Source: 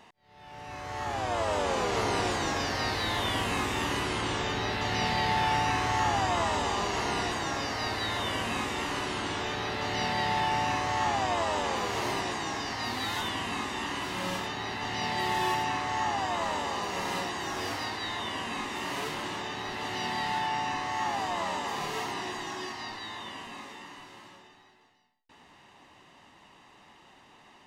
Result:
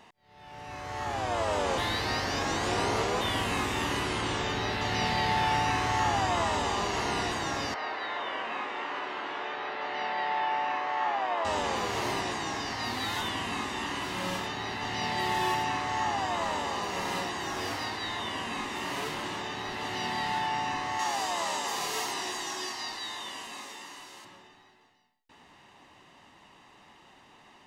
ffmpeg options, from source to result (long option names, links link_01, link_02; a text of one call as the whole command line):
ffmpeg -i in.wav -filter_complex "[0:a]asettb=1/sr,asplit=3[link_01][link_02][link_03];[link_01]atrim=end=7.744[link_04];[link_02]atrim=start=7.74:end=11.45,asetpts=PTS-STARTPTS,afade=type=in:duration=0.004:curve=qsin,afade=type=out:start_time=3.706:duration=0.004:curve=qsin,highpass=480,lowpass=2400[link_05];[link_03]atrim=start=11.446[link_06];[link_04][link_05]acrossfade=duration=0.004:curve1=hsin:curve2=qsin[link_07];[link_07][link_06]acrossfade=duration=0.004:curve1=qsin:curve2=hsin,asettb=1/sr,asplit=3[link_08][link_09][link_10];[link_08]atrim=end=20.994[link_11];[link_09]atrim=start=20.99:end=24.25,asetpts=PTS-STARTPTS,afade=type=in:duration=0.004:curve=qsin,afade=type=out:start_time=3.256:duration=0.004:curve=qsin,bass=frequency=250:gain=-9,treble=frequency=4000:gain=10[link_12];[link_10]atrim=start=24.246[link_13];[link_11][link_12]acrossfade=duration=0.004:curve1=hsin:curve2=qsin[link_14];[link_14][link_13]acrossfade=duration=0.004:curve1=qsin:curve2=hsin,asplit=3[link_15][link_16][link_17];[link_15]atrim=end=1.782[link_18];[link_16]atrim=start=1.778:end=3.212,asetpts=PTS-STARTPTS,areverse[link_19];[link_17]atrim=start=3.208[link_20];[link_18][link_19]acrossfade=duration=0.004:curve1=hsin:curve2=hsin[link_21];[link_21][link_20]acrossfade=duration=0.004:curve1=hsin:curve2=hsin" out.wav